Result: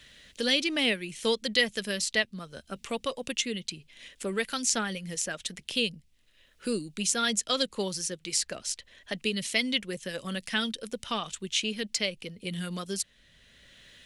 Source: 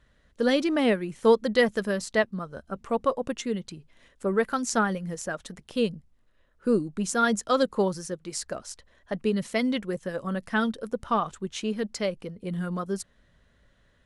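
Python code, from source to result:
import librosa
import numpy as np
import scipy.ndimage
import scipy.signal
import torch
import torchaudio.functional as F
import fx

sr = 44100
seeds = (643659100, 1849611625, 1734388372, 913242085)

y = fx.high_shelf_res(x, sr, hz=1800.0, db=13.0, q=1.5)
y = fx.band_squash(y, sr, depth_pct=40)
y = F.gain(torch.from_numpy(y), -6.5).numpy()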